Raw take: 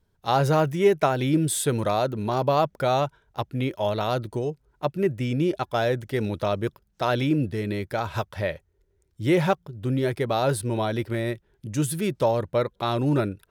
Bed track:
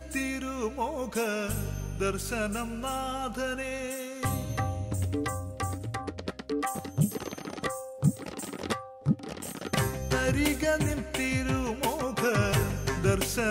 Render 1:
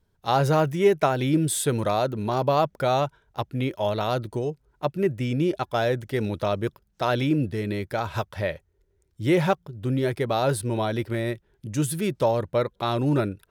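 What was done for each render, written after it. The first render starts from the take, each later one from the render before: nothing audible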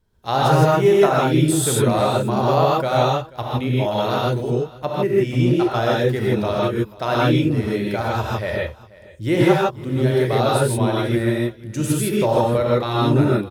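echo 0.487 s -21 dB; non-linear reverb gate 0.18 s rising, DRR -4.5 dB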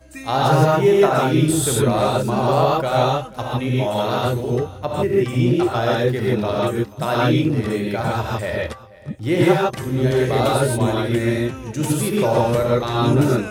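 add bed track -4.5 dB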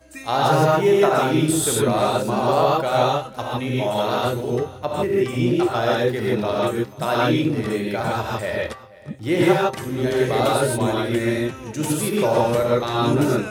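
low shelf 120 Hz -9.5 dB; de-hum 132.4 Hz, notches 36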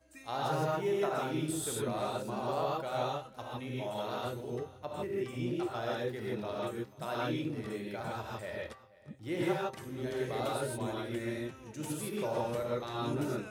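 gain -15.5 dB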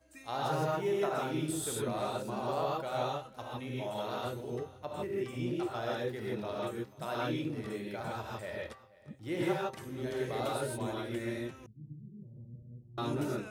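11.66–12.98 ladder low-pass 200 Hz, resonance 35%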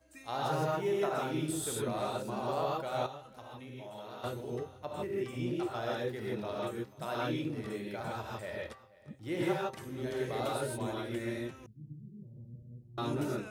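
3.06–4.24 compressor 2:1, threshold -49 dBFS

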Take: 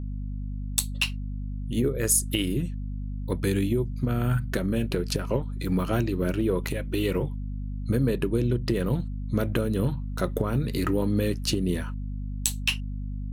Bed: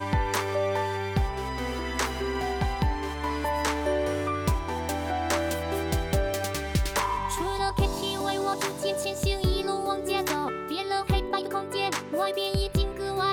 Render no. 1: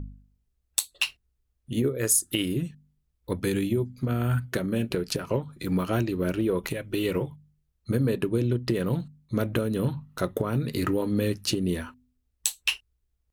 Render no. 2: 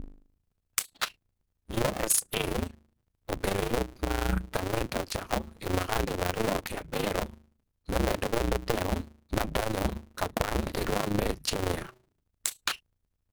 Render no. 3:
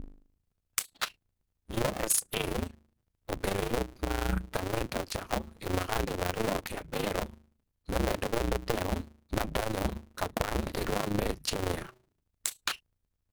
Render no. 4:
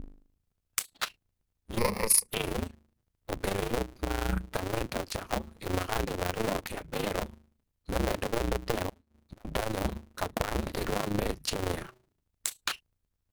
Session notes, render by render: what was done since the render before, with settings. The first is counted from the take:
de-hum 50 Hz, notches 5
cycle switcher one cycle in 2, inverted; AM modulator 27 Hz, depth 55%
gain -2 dB
1.78–2.29 ripple EQ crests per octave 0.88, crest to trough 14 dB; 8.89–9.45 flipped gate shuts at -31 dBFS, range -29 dB

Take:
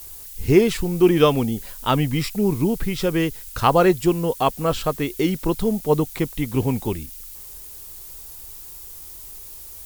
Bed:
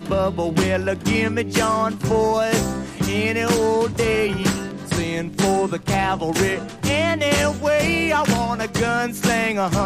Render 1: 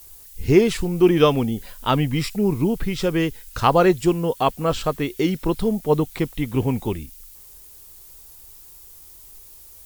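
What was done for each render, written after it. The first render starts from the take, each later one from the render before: noise print and reduce 6 dB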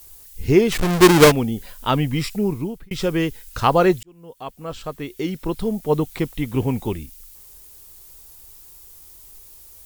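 0.72–1.32 half-waves squared off; 2.38–2.91 fade out; 4.03–6.1 fade in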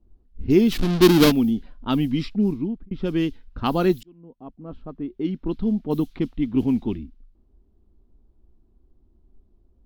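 low-pass opened by the level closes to 440 Hz, open at -14.5 dBFS; graphic EQ 125/250/500/1000/2000/4000/8000 Hz -9/+9/-10/-6/-8/+3/-12 dB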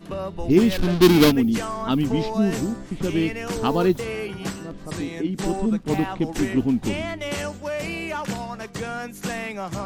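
add bed -10 dB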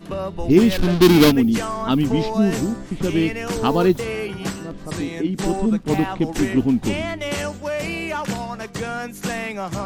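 gain +3 dB; limiter -2 dBFS, peak gain reduction 2.5 dB

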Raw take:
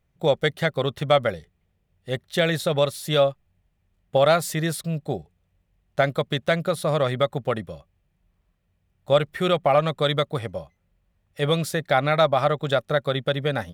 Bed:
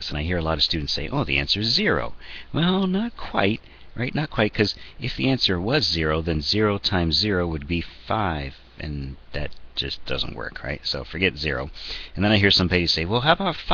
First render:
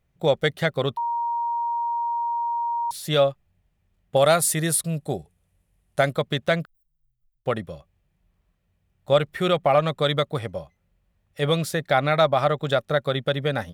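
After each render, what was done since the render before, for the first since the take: 0.97–2.91 bleep 940 Hz -22.5 dBFS; 4.16–6.13 bell 10000 Hz +14 dB; 6.65–7.46 inverse Chebyshev band-stop 190–9100 Hz, stop band 80 dB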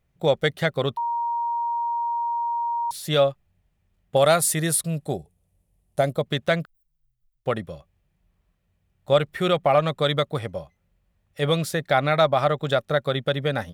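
5.17–6.26 EQ curve 680 Hz 0 dB, 1500 Hz -9 dB, 12000 Hz 0 dB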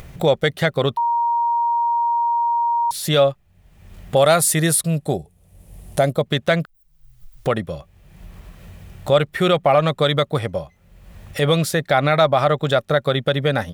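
in parallel at +1 dB: limiter -16.5 dBFS, peak gain reduction 10.5 dB; on the sum: upward compressor, threshold -20 dBFS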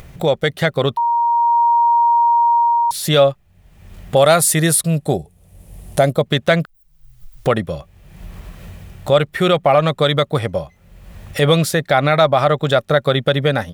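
AGC gain up to 6 dB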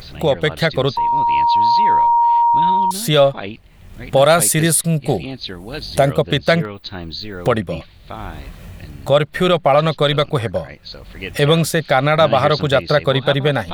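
add bed -8 dB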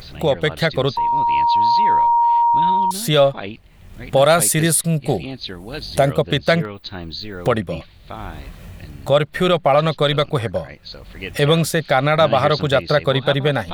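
gain -1.5 dB

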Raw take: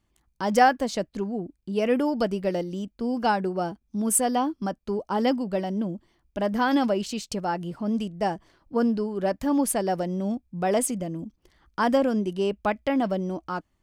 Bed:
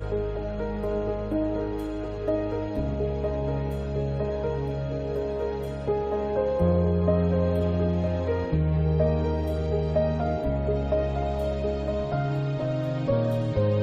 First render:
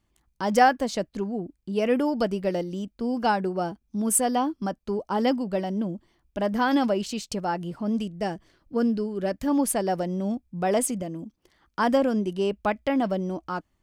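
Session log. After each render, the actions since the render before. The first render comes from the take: 8.02–9.48 bell 910 Hz -7 dB 0.89 oct; 11.02–11.79 low shelf 100 Hz -11.5 dB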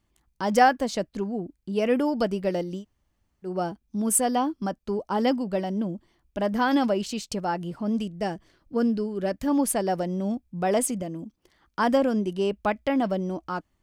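2.8–3.47 room tone, crossfade 0.10 s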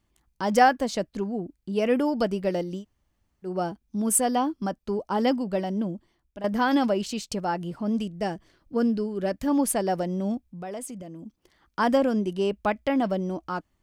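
5.88–6.44 fade out linear, to -12 dB; 10.43–11.25 compressor 2:1, threshold -42 dBFS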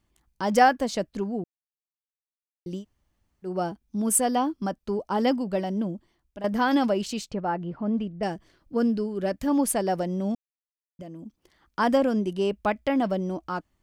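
1.44–2.66 mute; 7.31–8.23 LPF 2100 Hz; 10.35–10.99 mute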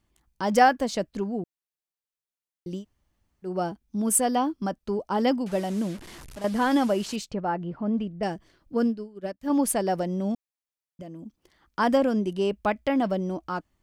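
5.46–7.16 delta modulation 64 kbps, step -38 dBFS; 8.84–9.5 upward expander 2.5:1, over -35 dBFS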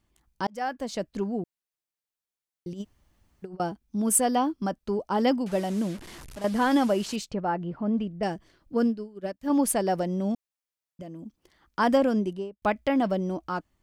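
0.47–1.22 fade in; 2.73–3.6 negative-ratio compressor -37 dBFS, ratio -0.5; 12.17–12.62 studio fade out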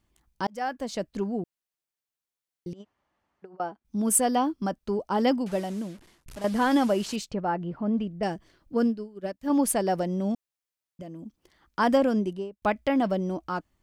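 2.73–3.85 band-pass 1000 Hz, Q 0.77; 5.43–6.26 fade out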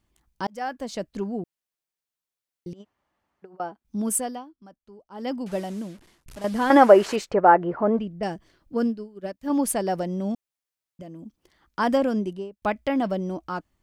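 4.02–5.54 dip -20 dB, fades 0.43 s; 6.7–7.99 band shelf 870 Hz +13.5 dB 3 oct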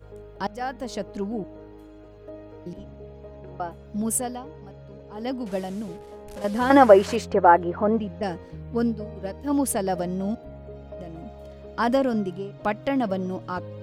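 add bed -15 dB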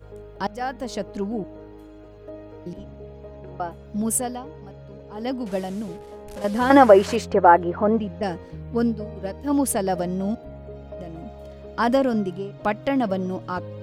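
gain +2 dB; limiter -2 dBFS, peak gain reduction 2 dB

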